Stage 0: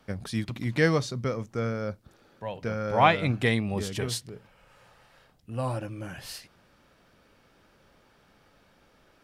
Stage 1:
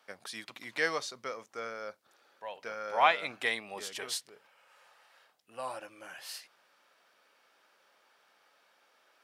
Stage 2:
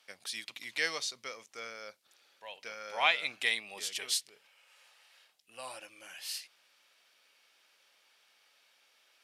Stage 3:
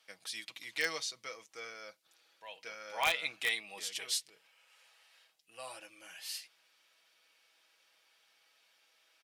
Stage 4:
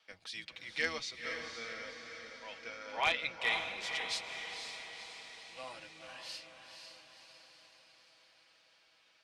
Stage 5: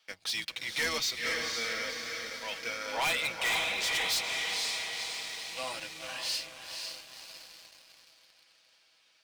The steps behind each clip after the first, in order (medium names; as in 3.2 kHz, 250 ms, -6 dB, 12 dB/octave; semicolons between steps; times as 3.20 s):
high-pass 690 Hz 12 dB/octave; trim -2.5 dB
high-order bell 5.3 kHz +11.5 dB 3 oct; trim -7 dB
comb 6.2 ms, depth 50%; in parallel at -4 dB: integer overflow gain 16 dB; on the sum: trim -7.5 dB
octave divider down 1 oct, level -2 dB; low-pass 4.7 kHz 12 dB/octave; on a send: echo that smears into a reverb 507 ms, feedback 58%, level -6 dB
treble shelf 3.9 kHz +10.5 dB; waveshaping leveller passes 2; saturation -28 dBFS, distortion -9 dB; trim +1.5 dB